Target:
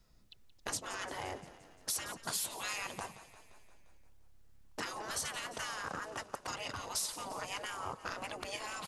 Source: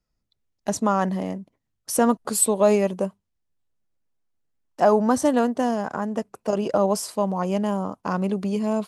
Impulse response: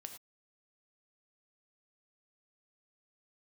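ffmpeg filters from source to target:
-filter_complex "[0:a]afftfilt=real='re*lt(hypot(re,im),0.0891)':imag='im*lt(hypot(re,im),0.0891)':win_size=1024:overlap=0.75,adynamicequalizer=threshold=0.00158:dfrequency=360:dqfactor=0.94:tfrequency=360:tqfactor=0.94:attack=5:release=100:ratio=0.375:range=3:mode=cutabove:tftype=bell,acompressor=threshold=0.00112:ratio=2,asplit=3[s0][s1][s2];[s1]asetrate=33038,aresample=44100,atempo=1.33484,volume=0.447[s3];[s2]asetrate=35002,aresample=44100,atempo=1.25992,volume=0.141[s4];[s0][s3][s4]amix=inputs=3:normalize=0,asplit=8[s5][s6][s7][s8][s9][s10][s11][s12];[s6]adelay=174,afreqshift=-35,volume=0.178[s13];[s7]adelay=348,afreqshift=-70,volume=0.11[s14];[s8]adelay=522,afreqshift=-105,volume=0.0684[s15];[s9]adelay=696,afreqshift=-140,volume=0.0422[s16];[s10]adelay=870,afreqshift=-175,volume=0.0263[s17];[s11]adelay=1044,afreqshift=-210,volume=0.0162[s18];[s12]adelay=1218,afreqshift=-245,volume=0.0101[s19];[s5][s13][s14][s15][s16][s17][s18][s19]amix=inputs=8:normalize=0,volume=3.55"

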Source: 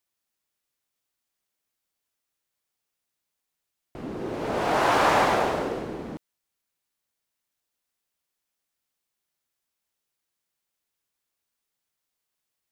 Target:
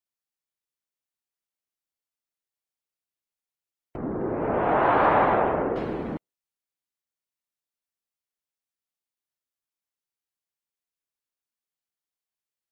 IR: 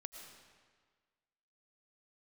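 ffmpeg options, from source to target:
-filter_complex "[0:a]asettb=1/sr,asplit=3[s0][s1][s2];[s0]atrim=end=3.964[s3];[s1]atrim=start=3.96:end=5.76,asetpts=PTS-STARTPTS,afade=t=in:d=0.004:c=qsin,afade=t=out:st=1.796:d=0.004:c=qsin,lowpass=1600[s4];[s2]atrim=start=5.756[s5];[s3][s4]acrossfade=d=0.004:c1=hsin:c2=qsin[s6];[s6][s5]acrossfade=d=0.004:c1=qsin:c2=hsin,asplit=2[s7][s8];[s8]acompressor=threshold=0.0282:ratio=6,volume=0.794[s9];[s7][s9]amix=inputs=2:normalize=0,afftdn=nr=16:nf=-50"

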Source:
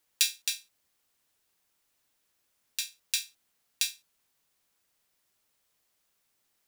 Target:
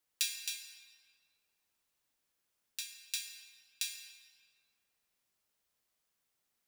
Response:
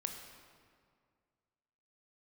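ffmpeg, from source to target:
-filter_complex "[1:a]atrim=start_sample=2205[s0];[0:a][s0]afir=irnorm=-1:irlink=0,volume=0.473"

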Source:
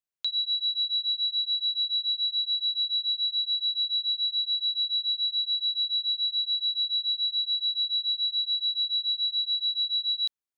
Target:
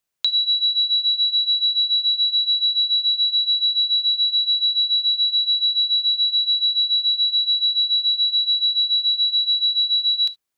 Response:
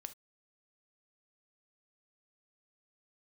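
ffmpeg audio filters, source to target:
-filter_complex "[0:a]acompressor=threshold=0.0398:ratio=6,asplit=2[s0][s1];[1:a]atrim=start_sample=2205[s2];[s1][s2]afir=irnorm=-1:irlink=0,volume=1.41[s3];[s0][s3]amix=inputs=2:normalize=0,volume=2.11"

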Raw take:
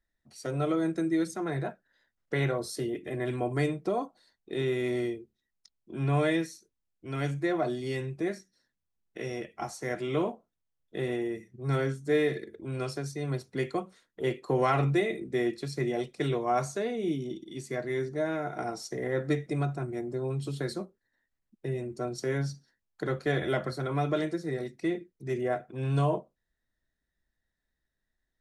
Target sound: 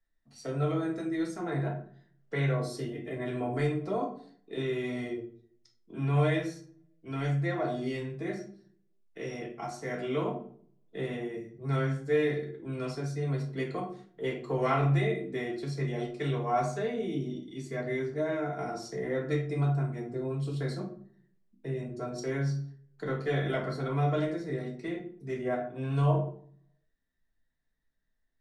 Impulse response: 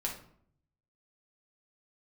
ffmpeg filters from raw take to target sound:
-filter_complex "[0:a]highshelf=f=9600:g=-11,acrossover=split=140|420|2000[s0][s1][s2][s3];[s1]alimiter=level_in=2.11:limit=0.0631:level=0:latency=1,volume=0.473[s4];[s0][s4][s2][s3]amix=inputs=4:normalize=0[s5];[1:a]atrim=start_sample=2205,asetrate=52920,aresample=44100[s6];[s5][s6]afir=irnorm=-1:irlink=0,volume=0.794"

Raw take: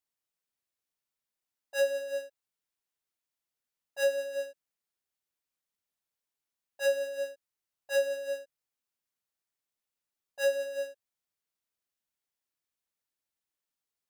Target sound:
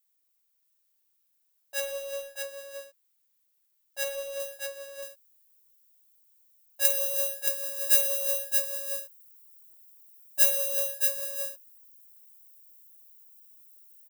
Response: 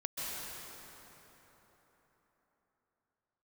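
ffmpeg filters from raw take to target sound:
-af "aeval=exprs='if(lt(val(0),0),0.708*val(0),val(0))':c=same,asetnsamples=n=441:p=0,asendcmd='4.4 highshelf g 2.5;6.85 highshelf g 11.5',highshelf=f=5800:g=-6,acompressor=threshold=0.0282:ratio=5,aemphasis=mode=production:type=riaa,aecho=1:1:52|99|123|624:0.335|0.178|0.178|0.596,volume=1.12"

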